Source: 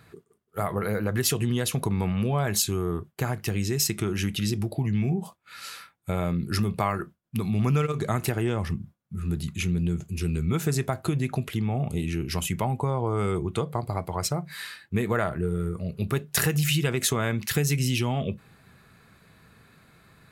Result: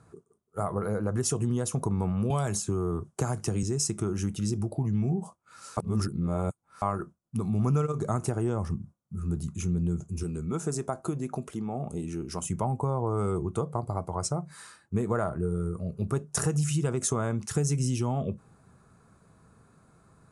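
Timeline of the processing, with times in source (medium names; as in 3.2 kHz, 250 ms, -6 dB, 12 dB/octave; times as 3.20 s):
2.30–3.63 s: three bands compressed up and down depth 100%
5.77–6.82 s: reverse
10.23–12.46 s: peaking EQ 100 Hz -12.5 dB 0.98 oct
whole clip: elliptic low-pass 10 kHz, stop band 40 dB; high-order bell 2.8 kHz -14.5 dB; trim -1 dB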